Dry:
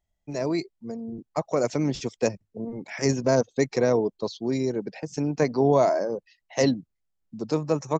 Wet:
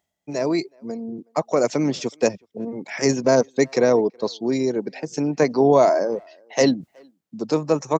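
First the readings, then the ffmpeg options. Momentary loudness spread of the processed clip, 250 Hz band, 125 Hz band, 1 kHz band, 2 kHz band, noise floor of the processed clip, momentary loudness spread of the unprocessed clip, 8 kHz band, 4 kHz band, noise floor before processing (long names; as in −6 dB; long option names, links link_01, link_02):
14 LU, +4.0 dB, −0.5 dB, +5.0 dB, +5.0 dB, −79 dBFS, 14 LU, can't be measured, +5.0 dB, −78 dBFS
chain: -filter_complex "[0:a]highpass=180,areverse,acompressor=mode=upward:threshold=-38dB:ratio=2.5,areverse,asplit=2[link_01][link_02];[link_02]adelay=370,highpass=300,lowpass=3400,asoftclip=type=hard:threshold=-18dB,volume=-29dB[link_03];[link_01][link_03]amix=inputs=2:normalize=0,volume=5dB"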